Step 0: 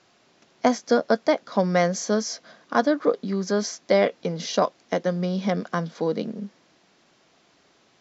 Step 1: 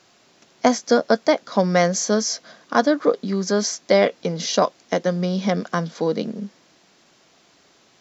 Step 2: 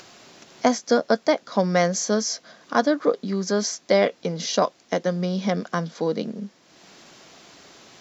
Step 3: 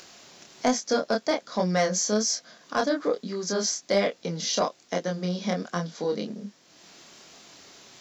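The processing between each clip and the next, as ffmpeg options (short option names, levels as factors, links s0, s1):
-af "highshelf=f=6500:g=9.5,volume=1.41"
-af "acompressor=mode=upward:threshold=0.0178:ratio=2.5,volume=0.75"
-af "highshelf=f=3900:g=7.5,flanger=delay=22.5:depth=6.4:speed=1.2,acontrast=85,volume=0.376"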